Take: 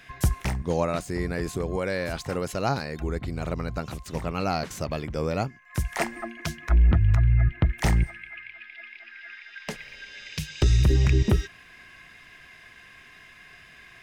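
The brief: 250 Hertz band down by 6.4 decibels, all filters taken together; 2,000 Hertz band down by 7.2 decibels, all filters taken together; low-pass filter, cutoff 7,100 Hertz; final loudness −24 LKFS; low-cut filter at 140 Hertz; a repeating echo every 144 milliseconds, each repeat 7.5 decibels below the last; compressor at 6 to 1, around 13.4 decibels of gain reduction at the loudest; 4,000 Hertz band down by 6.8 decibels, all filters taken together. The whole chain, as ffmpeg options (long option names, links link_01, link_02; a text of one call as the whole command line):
ffmpeg -i in.wav -af "highpass=140,lowpass=7100,equalizer=frequency=250:width_type=o:gain=-8.5,equalizer=frequency=2000:width_type=o:gain=-7.5,equalizer=frequency=4000:width_type=o:gain=-6,acompressor=threshold=-39dB:ratio=6,aecho=1:1:144|288|432|576|720:0.422|0.177|0.0744|0.0312|0.0131,volume=20dB" out.wav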